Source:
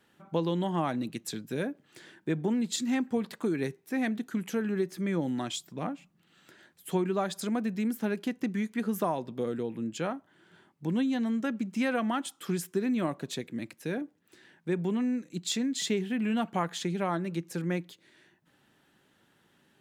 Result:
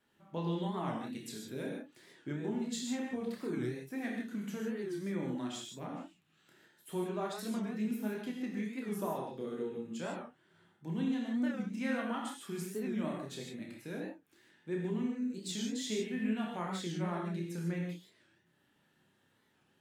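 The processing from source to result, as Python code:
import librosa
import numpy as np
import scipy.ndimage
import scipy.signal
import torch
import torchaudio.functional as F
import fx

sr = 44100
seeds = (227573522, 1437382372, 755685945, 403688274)

y = fx.chorus_voices(x, sr, voices=2, hz=0.13, base_ms=29, depth_ms=1.7, mix_pct=35)
y = fx.rev_gated(y, sr, seeds[0], gate_ms=180, shape='flat', drr_db=-0.5)
y = fx.record_warp(y, sr, rpm=45.0, depth_cents=160.0)
y = F.gain(torch.from_numpy(y), -7.5).numpy()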